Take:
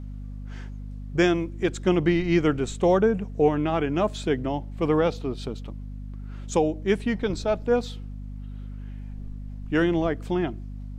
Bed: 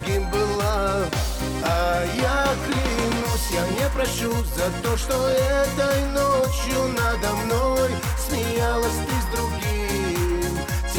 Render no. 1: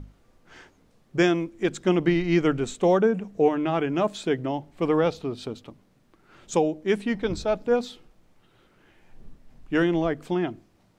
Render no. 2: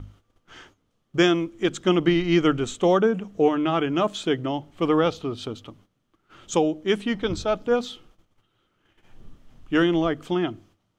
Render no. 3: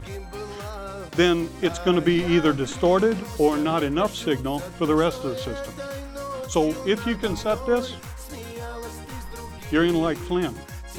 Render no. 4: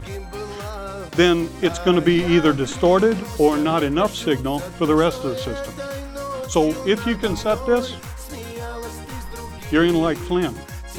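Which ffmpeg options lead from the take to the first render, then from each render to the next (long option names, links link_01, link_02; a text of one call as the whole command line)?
ffmpeg -i in.wav -af "bandreject=frequency=50:width_type=h:width=6,bandreject=frequency=100:width_type=h:width=6,bandreject=frequency=150:width_type=h:width=6,bandreject=frequency=200:width_type=h:width=6,bandreject=frequency=250:width_type=h:width=6" out.wav
ffmpeg -i in.wav -af "agate=range=-12dB:threshold=-55dB:ratio=16:detection=peak,equalizer=frequency=100:width_type=o:width=0.33:gain=8,equalizer=frequency=315:width_type=o:width=0.33:gain=3,equalizer=frequency=1250:width_type=o:width=0.33:gain=7,equalizer=frequency=3150:width_type=o:width=0.33:gain=9,equalizer=frequency=6300:width_type=o:width=0.33:gain=4" out.wav
ffmpeg -i in.wav -i bed.wav -filter_complex "[1:a]volume=-12.5dB[link_01];[0:a][link_01]amix=inputs=2:normalize=0" out.wav
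ffmpeg -i in.wav -af "volume=3.5dB" out.wav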